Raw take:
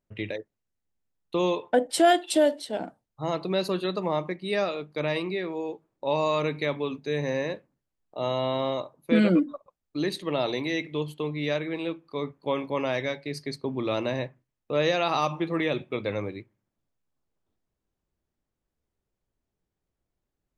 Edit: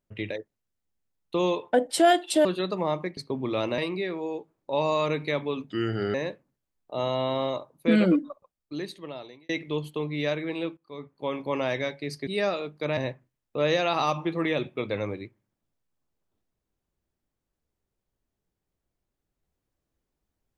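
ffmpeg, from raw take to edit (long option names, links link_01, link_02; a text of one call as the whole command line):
ffmpeg -i in.wav -filter_complex "[0:a]asplit=10[link_01][link_02][link_03][link_04][link_05][link_06][link_07][link_08][link_09][link_10];[link_01]atrim=end=2.452[link_11];[link_02]atrim=start=3.698:end=4.422[link_12];[link_03]atrim=start=13.508:end=14.122[link_13];[link_04]atrim=start=5.118:end=7.044[link_14];[link_05]atrim=start=7.04:end=7.38,asetpts=PTS-STARTPTS,asetrate=33957,aresample=44100[link_15];[link_06]atrim=start=7.376:end=10.73,asetpts=PTS-STARTPTS,afade=type=out:start_time=1.974:duration=1.38[link_16];[link_07]atrim=start=10.73:end=12.01,asetpts=PTS-STARTPTS,afade=type=in:duration=0.004:curve=hsin,afade=type=out:start_time=1.276:duration=0.004:curve=hsin:silence=0.149624[link_17];[link_08]atrim=start=12.01:end=13.512,asetpts=PTS-STARTPTS,afade=type=in:duration=0.77:silence=0.149624[link_18];[link_09]atrim=start=4.418:end=5.122[link_19];[link_10]atrim=start=14.118[link_20];[link_11][link_12]acrossfade=duration=0.004:curve1=hsin:curve2=hsin[link_21];[link_21][link_13]acrossfade=duration=0.004:curve1=hsin:curve2=hsin[link_22];[link_22][link_14]acrossfade=duration=0.004:curve1=hsin:curve2=hsin[link_23];[link_23][link_15]acrossfade=duration=0.004:curve1=hsin:curve2=hsin[link_24];[link_16][link_17][link_18]concat=n=3:v=0:a=1[link_25];[link_24][link_25]acrossfade=duration=0.004:curve1=hsin:curve2=hsin[link_26];[link_26][link_19]acrossfade=duration=0.004:curve1=hsin:curve2=hsin[link_27];[link_27][link_20]acrossfade=duration=0.004:curve1=hsin:curve2=hsin" out.wav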